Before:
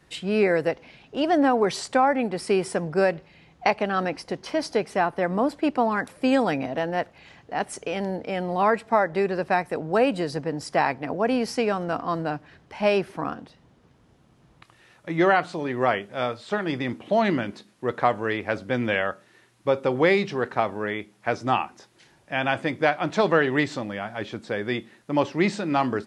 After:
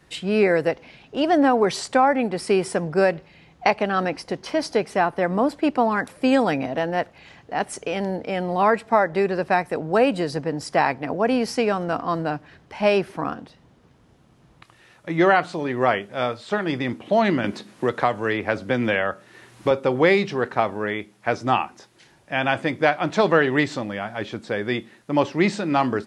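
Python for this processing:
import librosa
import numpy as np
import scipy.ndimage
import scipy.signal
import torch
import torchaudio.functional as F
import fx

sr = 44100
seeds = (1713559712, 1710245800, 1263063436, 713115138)

y = fx.band_squash(x, sr, depth_pct=70, at=(17.44, 19.71))
y = y * 10.0 ** (2.5 / 20.0)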